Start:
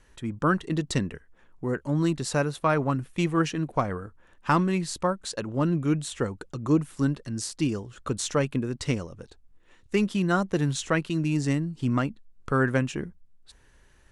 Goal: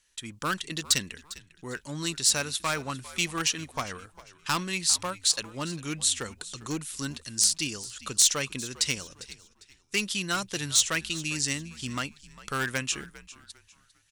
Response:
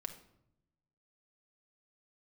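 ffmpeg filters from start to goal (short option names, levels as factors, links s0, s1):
-filter_complex "[0:a]agate=range=0.282:threshold=0.00355:ratio=16:detection=peak,equalizer=f=3900:t=o:w=2.7:g=10.5,aeval=exprs='clip(val(0),-1,0.15)':c=same,crystalizer=i=6.5:c=0,asplit=2[s0][s1];[s1]asplit=3[s2][s3][s4];[s2]adelay=401,afreqshift=-78,volume=0.126[s5];[s3]adelay=802,afreqshift=-156,volume=0.0389[s6];[s4]adelay=1203,afreqshift=-234,volume=0.0122[s7];[s5][s6][s7]amix=inputs=3:normalize=0[s8];[s0][s8]amix=inputs=2:normalize=0,volume=0.266"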